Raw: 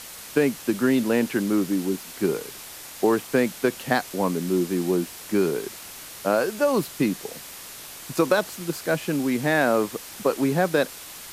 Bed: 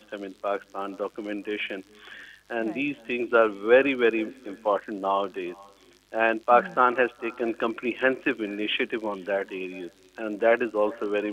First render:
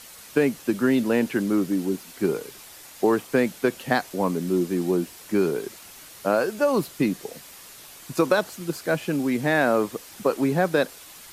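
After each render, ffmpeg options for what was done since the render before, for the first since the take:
-af "afftdn=nr=6:nf=-41"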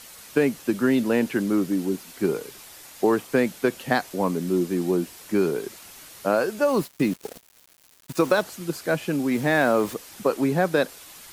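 -filter_complex "[0:a]asettb=1/sr,asplit=3[a][b][c];[a]atrim=end=6.654[d];[b]atrim=start=6.65:end=8.42,asetpts=PTS-STARTPTS,afade=t=in:d=0.004:c=qsin,afade=t=out:st=1.766:d=0.004:c=qsin,aeval=exprs='val(0)*gte(abs(val(0)),0.015)':c=same[e];[c]atrim=start=8.416[f];[d][e]acrossfade=d=0.004:c1=hsin:c2=qsin[g];[g][f]acrossfade=d=0.004:c1=qsin:c2=hsin,asettb=1/sr,asplit=3[h][i][j];[h]atrim=end=9.314[k];[i]atrim=start=9.31:end=9.94,asetpts=PTS-STARTPTS,afade=t=in:d=0.004:c=qsin,afade=t=out:st=0.626:d=0.004:c=qsin,aeval=exprs='val(0)+0.5*0.0158*sgn(val(0))':c=same[l];[j]atrim=start=9.936[m];[k][l]acrossfade=d=0.004:c1=hsin:c2=qsin[n];[n][m]acrossfade=d=0.004:c1=qsin:c2=hsin"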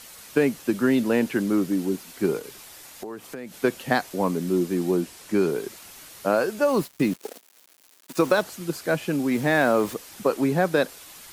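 -filter_complex "[0:a]asettb=1/sr,asplit=3[a][b][c];[a]atrim=end=2.394[d];[b]atrim=start=2.39:end=3.54,asetpts=PTS-STARTPTS,afade=t=in:d=0.004:c=qsin,afade=t=out:st=1.146:d=0.004:c=qsin,acompressor=threshold=-33dB:ratio=6:attack=3.2:release=140:knee=1:detection=peak[e];[c]atrim=start=3.536[f];[d][e]acrossfade=d=0.004:c1=hsin:c2=qsin[g];[g][f]acrossfade=d=0.004:c1=qsin:c2=hsin,asettb=1/sr,asplit=3[h][i][j];[h]atrim=end=5.014[k];[i]atrim=start=5.01:end=5.49,asetpts=PTS-STARTPTS,afade=t=in:d=0.004:c=qsin,afade=t=out:st=0.476:d=0.004:c=qsin,lowpass=12k[l];[j]atrim=start=5.486[m];[k][l]acrossfade=d=0.004:c1=hsin:c2=qsin[n];[n][m]acrossfade=d=0.004:c1=qsin:c2=hsin,asettb=1/sr,asplit=3[o][p][q];[o]atrim=end=7.164[r];[p]atrim=start=7.16:end=8.16,asetpts=PTS-STARTPTS,afade=t=in:d=0.004:c=qsin,afade=t=out:st=0.996:d=0.004:c=qsin,highpass=f=240:w=0.5412,highpass=f=240:w=1.3066[s];[q]atrim=start=8.156[t];[r][s]acrossfade=d=0.004:c1=hsin:c2=qsin[u];[u][t]acrossfade=d=0.004:c1=qsin:c2=hsin"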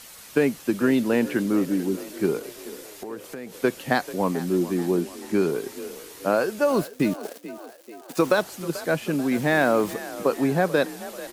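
-filter_complex "[0:a]asplit=6[a][b][c][d][e][f];[b]adelay=437,afreqshift=40,volume=-16dB[g];[c]adelay=874,afreqshift=80,volume=-21.2dB[h];[d]adelay=1311,afreqshift=120,volume=-26.4dB[i];[e]adelay=1748,afreqshift=160,volume=-31.6dB[j];[f]adelay=2185,afreqshift=200,volume=-36.8dB[k];[a][g][h][i][j][k]amix=inputs=6:normalize=0"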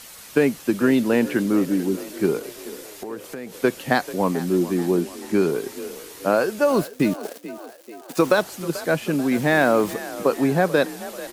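-af "volume=2.5dB"

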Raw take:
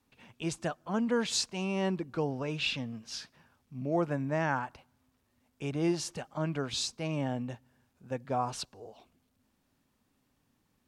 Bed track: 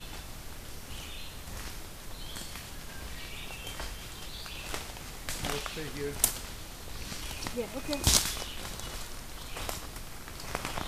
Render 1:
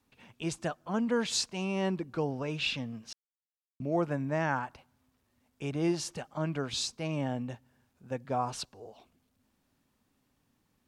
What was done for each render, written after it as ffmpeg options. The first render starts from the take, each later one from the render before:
-filter_complex "[0:a]asplit=3[a][b][c];[a]atrim=end=3.13,asetpts=PTS-STARTPTS,afade=t=out:st=3.126:d=0.004:c=hsin[d];[b]atrim=start=3.13:end=3.8,asetpts=PTS-STARTPTS,volume=0[e];[c]atrim=start=3.8,asetpts=PTS-STARTPTS,afade=t=in:d=0.004:c=hsin[f];[d][e][f]concat=n=3:v=0:a=1"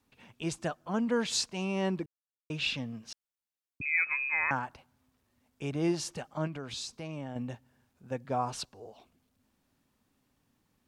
-filter_complex "[0:a]asettb=1/sr,asplit=3[a][b][c];[a]atrim=end=3.814[d];[b]atrim=start=3.81:end=4.51,asetpts=PTS-STARTPTS,afade=t=in:d=0.004:c=qsin,afade=t=out:st=0.696:d=0.004:c=qsin,lowpass=f=2.3k:t=q:w=0.5098,lowpass=f=2.3k:t=q:w=0.6013,lowpass=f=2.3k:t=q:w=0.9,lowpass=f=2.3k:t=q:w=2.563,afreqshift=-2700[e];[c]atrim=start=4.506[f];[d][e]acrossfade=d=0.004:c1=hsin:c2=qsin[g];[g][f]acrossfade=d=0.004:c1=qsin:c2=hsin,asettb=1/sr,asplit=3[h][i][j];[h]atrim=end=6.474[k];[i]atrim=start=6.47:end=7.36,asetpts=PTS-STARTPTS,afade=t=in:d=0.004:c=qsin,afade=t=out:st=0.886:d=0.004:c=qsin,acompressor=threshold=-38dB:ratio=2.5:attack=3.2:release=140:knee=1:detection=peak[l];[j]atrim=start=7.356[m];[k][l]acrossfade=d=0.004:c1=hsin:c2=qsin[n];[n][m]acrossfade=d=0.004:c1=qsin:c2=hsin,asplit=3[o][p][q];[o]atrim=end=2.06,asetpts=PTS-STARTPTS,afade=t=out:st=2.056:d=0.004:c=hsin[r];[p]atrim=start=2.06:end=2.5,asetpts=PTS-STARTPTS,volume=0[s];[q]atrim=start=2.5,asetpts=PTS-STARTPTS,afade=t=in:d=0.004:c=hsin[t];[r][s][t]concat=n=3:v=0:a=1"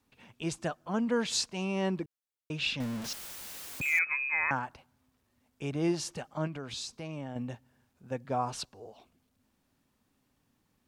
-filter_complex "[0:a]asettb=1/sr,asplit=3[a][b][c];[a]atrim=end=2.804[d];[b]atrim=start=2.8:end=3.99,asetpts=PTS-STARTPTS,afade=t=in:d=0.004:c=qsin,afade=t=out:st=1.186:d=0.004:c=qsin,aeval=exprs='val(0)+0.5*0.02*sgn(val(0))':c=same[e];[c]atrim=start=3.986[f];[d][e]acrossfade=d=0.004:c1=hsin:c2=qsin[g];[g][f]acrossfade=d=0.004:c1=qsin:c2=hsin"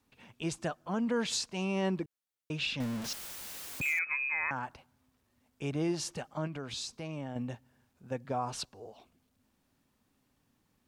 -af "alimiter=limit=-23dB:level=0:latency=1:release=123"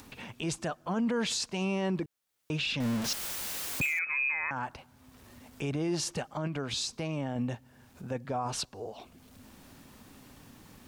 -filter_complex "[0:a]asplit=2[a][b];[b]acompressor=mode=upward:threshold=-34dB:ratio=2.5,volume=-1.5dB[c];[a][c]amix=inputs=2:normalize=0,alimiter=limit=-23.5dB:level=0:latency=1:release=16"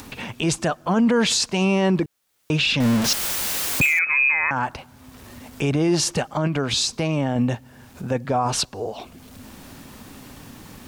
-af "volume=11.5dB"

